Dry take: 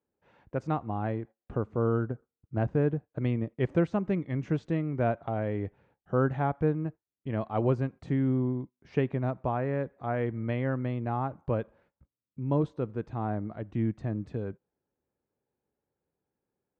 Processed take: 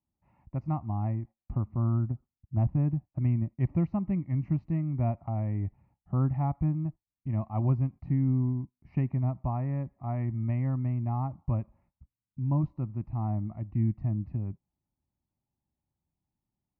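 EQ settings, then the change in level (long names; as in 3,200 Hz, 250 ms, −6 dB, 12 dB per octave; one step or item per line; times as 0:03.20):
low-pass filter 3,100 Hz 12 dB per octave
spectral tilt −3 dB per octave
phaser with its sweep stopped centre 2,300 Hz, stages 8
−4.0 dB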